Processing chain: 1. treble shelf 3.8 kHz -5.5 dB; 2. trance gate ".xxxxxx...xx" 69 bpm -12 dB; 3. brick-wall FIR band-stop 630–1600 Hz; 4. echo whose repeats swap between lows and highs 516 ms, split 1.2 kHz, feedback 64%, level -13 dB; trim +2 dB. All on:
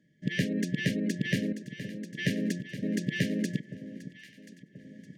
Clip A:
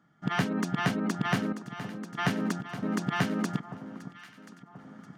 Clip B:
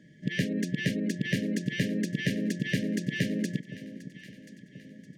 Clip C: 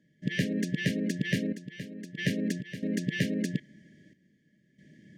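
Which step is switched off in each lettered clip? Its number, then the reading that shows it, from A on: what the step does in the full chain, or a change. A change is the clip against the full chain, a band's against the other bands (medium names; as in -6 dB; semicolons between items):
3, loudness change +1.0 LU; 2, momentary loudness spread change -1 LU; 4, echo-to-direct -14.5 dB to none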